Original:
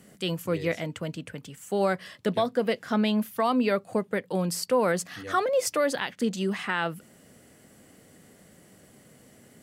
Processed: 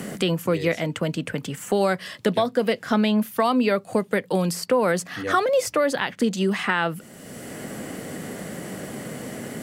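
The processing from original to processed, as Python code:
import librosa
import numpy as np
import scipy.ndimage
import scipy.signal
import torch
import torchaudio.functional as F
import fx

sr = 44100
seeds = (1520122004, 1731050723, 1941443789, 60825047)

y = fx.peak_eq(x, sr, hz=81.0, db=-6.5, octaves=0.33)
y = fx.band_squash(y, sr, depth_pct=70)
y = y * 10.0 ** (4.5 / 20.0)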